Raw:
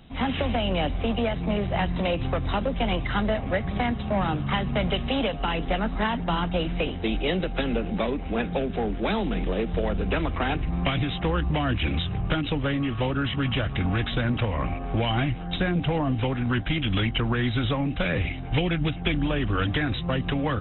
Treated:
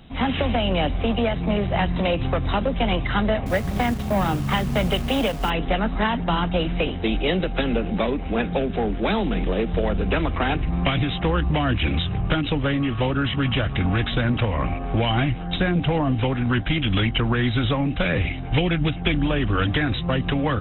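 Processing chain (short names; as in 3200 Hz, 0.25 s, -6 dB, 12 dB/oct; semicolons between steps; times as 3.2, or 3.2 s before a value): 3.46–5.5 level-crossing sampler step -37 dBFS; gain +3.5 dB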